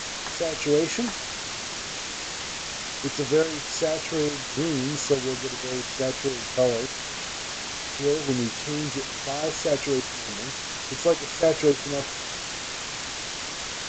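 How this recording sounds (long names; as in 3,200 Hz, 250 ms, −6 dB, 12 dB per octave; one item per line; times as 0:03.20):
sample-and-hold tremolo, depth 85%
a quantiser's noise floor 6 bits, dither triangular
G.722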